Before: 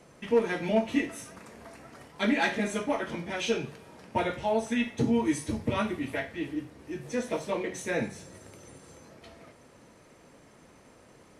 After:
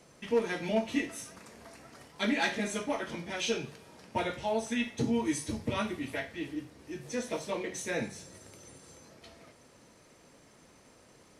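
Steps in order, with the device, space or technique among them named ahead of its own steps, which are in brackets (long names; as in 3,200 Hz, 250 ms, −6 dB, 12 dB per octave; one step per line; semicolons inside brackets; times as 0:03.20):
presence and air boost (parametric band 5,000 Hz +5.5 dB 1.5 octaves; high-shelf EQ 10,000 Hz +5.5 dB)
level −4 dB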